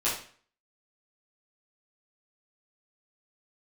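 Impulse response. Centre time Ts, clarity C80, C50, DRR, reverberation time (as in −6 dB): 37 ms, 9.5 dB, 4.5 dB, −11.5 dB, 0.45 s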